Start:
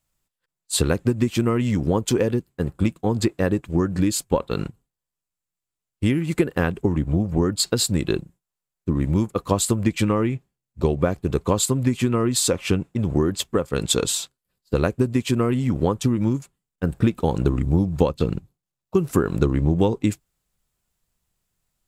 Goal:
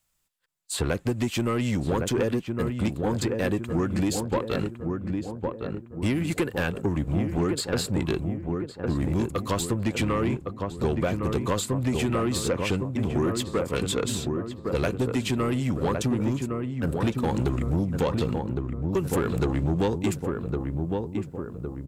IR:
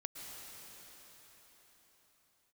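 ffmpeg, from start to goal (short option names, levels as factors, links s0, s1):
-filter_complex "[0:a]tiltshelf=f=660:g=-5,acrossover=split=410|1600|2100[s0][s1][s2][s3];[s3]acompressor=threshold=0.0316:ratio=6[s4];[s0][s1][s2][s4]amix=inputs=4:normalize=0,lowshelf=f=340:g=3.5,asplit=2[s5][s6];[s6]adelay=1110,lowpass=f=1200:p=1,volume=0.531,asplit=2[s7][s8];[s8]adelay=1110,lowpass=f=1200:p=1,volume=0.51,asplit=2[s9][s10];[s10]adelay=1110,lowpass=f=1200:p=1,volume=0.51,asplit=2[s11][s12];[s12]adelay=1110,lowpass=f=1200:p=1,volume=0.51,asplit=2[s13][s14];[s14]adelay=1110,lowpass=f=1200:p=1,volume=0.51,asplit=2[s15][s16];[s16]adelay=1110,lowpass=f=1200:p=1,volume=0.51[s17];[s5][s7][s9][s11][s13][s15][s17]amix=inputs=7:normalize=0,asoftclip=type=tanh:threshold=0.15,volume=0.841"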